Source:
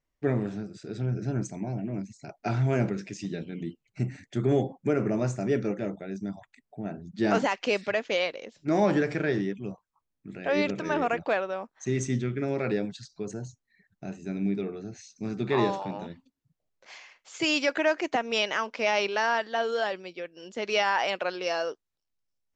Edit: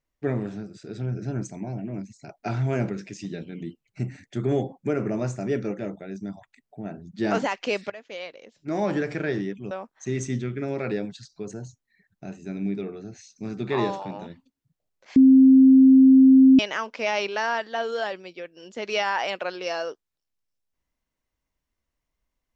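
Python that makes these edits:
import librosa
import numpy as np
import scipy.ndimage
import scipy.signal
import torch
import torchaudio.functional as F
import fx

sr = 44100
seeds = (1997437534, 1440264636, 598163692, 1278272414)

y = fx.edit(x, sr, fx.fade_in_from(start_s=7.9, length_s=1.29, floor_db=-16.5),
    fx.cut(start_s=9.71, length_s=1.8),
    fx.bleep(start_s=16.96, length_s=1.43, hz=264.0, db=-9.5), tone=tone)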